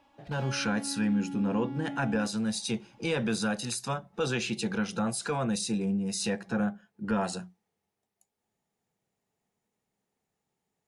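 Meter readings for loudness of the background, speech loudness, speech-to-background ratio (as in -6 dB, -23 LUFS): -40.5 LUFS, -31.0 LUFS, 9.5 dB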